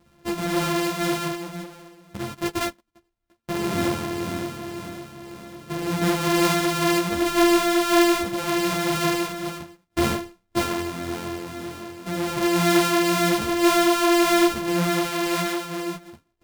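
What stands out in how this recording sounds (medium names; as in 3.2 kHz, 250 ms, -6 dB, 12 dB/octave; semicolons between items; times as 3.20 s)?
a buzz of ramps at a fixed pitch in blocks of 128 samples; tremolo triangle 1.9 Hz, depth 40%; a shimmering, thickened sound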